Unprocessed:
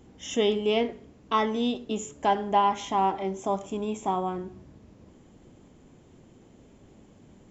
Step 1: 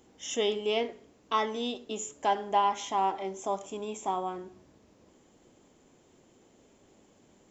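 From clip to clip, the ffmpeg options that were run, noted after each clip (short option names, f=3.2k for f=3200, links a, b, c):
-af "bass=f=250:g=-11,treble=f=4k:g=5,volume=-3dB"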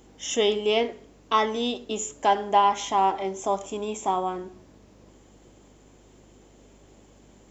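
-af "aeval=exprs='val(0)+0.000708*(sin(2*PI*50*n/s)+sin(2*PI*2*50*n/s)/2+sin(2*PI*3*50*n/s)/3+sin(2*PI*4*50*n/s)/4+sin(2*PI*5*50*n/s)/5)':c=same,volume=6dB"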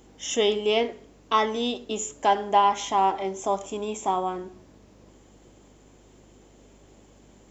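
-af anull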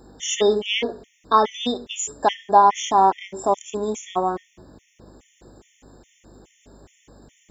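-af "afftfilt=real='re*gt(sin(2*PI*2.4*pts/sr)*(1-2*mod(floor(b*sr/1024/1800),2)),0)':imag='im*gt(sin(2*PI*2.4*pts/sr)*(1-2*mod(floor(b*sr/1024/1800),2)),0)':win_size=1024:overlap=0.75,volume=6dB"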